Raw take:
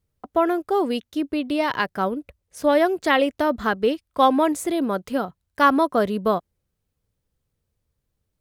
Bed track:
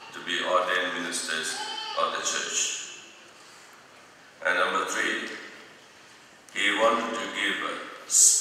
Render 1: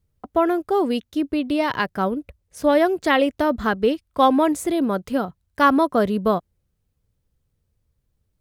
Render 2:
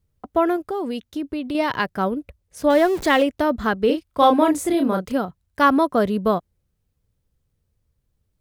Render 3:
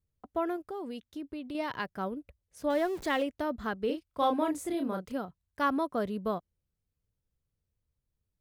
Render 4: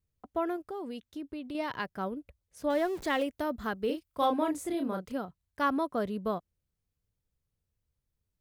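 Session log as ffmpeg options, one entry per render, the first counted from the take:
-af "lowshelf=f=200:g=7"
-filter_complex "[0:a]asettb=1/sr,asplit=3[a][b][c];[a]atrim=end=0.564[d];[b]atrim=start=0.56:end=1.55,asetpts=PTS-STARTPTS,afade=t=in:d=0.004:c=qsin,afade=t=out:st=0.986:d=0.004:c=qsin,acompressor=threshold=-24dB:ratio=3:attack=3.2:release=140:knee=1:detection=peak[e];[c]atrim=start=1.546[f];[d][e]acrossfade=d=0.004:c1=hsin:c2=qsin[g];[g][f]acrossfade=d=0.004:c1=qsin:c2=hsin,asettb=1/sr,asplit=3[h][i][j];[h]atrim=end=2.704[k];[i]atrim=start=2.7:end=3.23,asetpts=PTS-STARTPTS,afade=t=in:d=0.004:c=qsin,afade=t=out:st=0.526:d=0.004:c=qsin,aeval=exprs='val(0)+0.5*0.0355*sgn(val(0))':c=same[l];[j]atrim=start=3.226[m];[k][l]acrossfade=d=0.004:c1=hsin:c2=qsin[n];[n][m]acrossfade=d=0.004:c1=qsin:c2=hsin,asettb=1/sr,asplit=3[o][p][q];[o]atrim=end=3.864[r];[p]atrim=start=3.86:end=5.12,asetpts=PTS-STARTPTS,afade=t=in:d=0.004:c=qsin,afade=t=out:st=1.256:d=0.004:c=qsin,asplit=2[s][t];[t]adelay=32,volume=-4dB[u];[s][u]amix=inputs=2:normalize=0,atrim=end_sample=55566[v];[q]atrim=start=5.116[w];[r][v]acrossfade=d=0.004:c1=hsin:c2=qsin[x];[x][w]acrossfade=d=0.004:c1=qsin:c2=hsin"
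-af "volume=-12.5dB"
-filter_complex "[0:a]asettb=1/sr,asplit=3[a][b][c];[a]atrim=end=3.214[d];[b]atrim=start=3.21:end=4.26,asetpts=PTS-STARTPTS,afade=t=in:d=0.004:c=qsin,afade=t=out:st=1.046:d=0.004:c=qsin,highshelf=f=9.1k:g=9[e];[c]atrim=start=4.256[f];[d][e]acrossfade=d=0.004:c1=hsin:c2=qsin[g];[g][f]acrossfade=d=0.004:c1=qsin:c2=hsin"

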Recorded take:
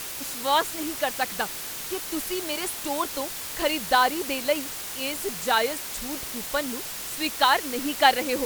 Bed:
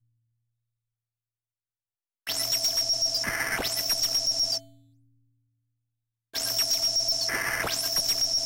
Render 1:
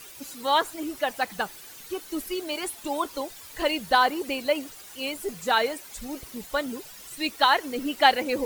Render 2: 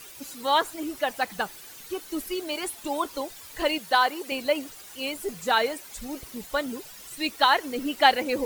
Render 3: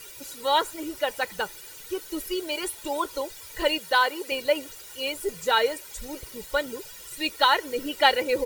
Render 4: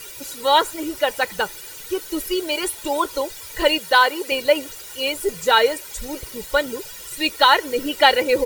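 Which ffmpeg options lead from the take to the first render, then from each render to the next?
-af "afftdn=nr=13:nf=-35"
-filter_complex "[0:a]asettb=1/sr,asplit=3[a][b][c];[a]atrim=end=3.784[d];[b]atrim=start=3.78:end=4.32,asetpts=PTS-STARTPTS,afade=t=in:d=0.004:c=qsin,afade=t=out:st=0.536:d=0.004:c=qsin,highpass=f=510:p=1[e];[c]atrim=start=4.316[f];[d][e]acrossfade=d=0.004:c1=hsin:c2=qsin[g];[g][f]acrossfade=d=0.004:c1=qsin:c2=hsin"
-af "equalizer=f=960:t=o:w=0.54:g=-3,aecho=1:1:2.1:0.58"
-af "volume=6.5dB,alimiter=limit=-1dB:level=0:latency=1"

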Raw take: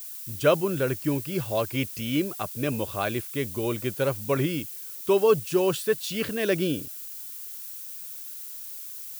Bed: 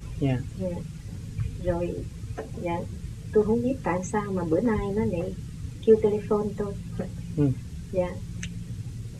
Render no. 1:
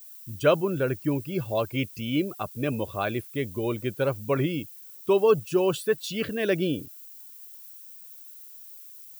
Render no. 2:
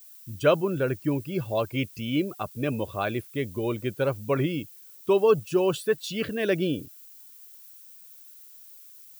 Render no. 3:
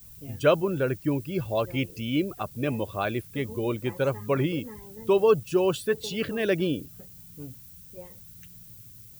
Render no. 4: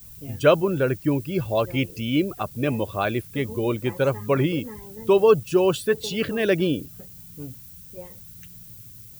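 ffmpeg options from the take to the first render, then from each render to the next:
-af "afftdn=nr=11:nf=-39"
-af "highshelf=f=10k:g=-3.5"
-filter_complex "[1:a]volume=-18.5dB[a];[0:a][a]amix=inputs=2:normalize=0"
-af "volume=4dB"

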